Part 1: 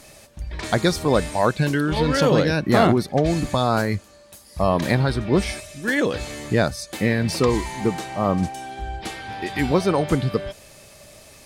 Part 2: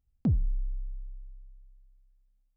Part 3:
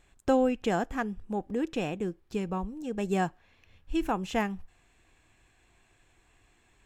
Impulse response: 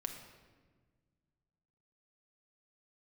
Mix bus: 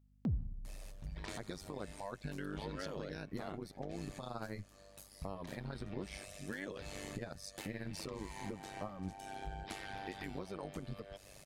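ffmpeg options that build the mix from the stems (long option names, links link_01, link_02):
-filter_complex "[0:a]acompressor=threshold=-30dB:ratio=4,alimiter=limit=-22dB:level=0:latency=1:release=190,tremolo=f=98:d=0.889,adelay=650,volume=-7dB[link_01];[1:a]highpass=frequency=51:width=0.5412,highpass=frequency=51:width=1.3066,alimiter=level_in=3dB:limit=-24dB:level=0:latency=1:release=64,volume=-3dB,volume=-3.5dB,asplit=2[link_02][link_03];[link_03]volume=-12dB[link_04];[3:a]atrim=start_sample=2205[link_05];[link_04][link_05]afir=irnorm=-1:irlink=0[link_06];[link_01][link_02][link_06]amix=inputs=3:normalize=0,aeval=exprs='val(0)+0.000501*(sin(2*PI*50*n/s)+sin(2*PI*2*50*n/s)/2+sin(2*PI*3*50*n/s)/3+sin(2*PI*4*50*n/s)/4+sin(2*PI*5*50*n/s)/5)':channel_layout=same"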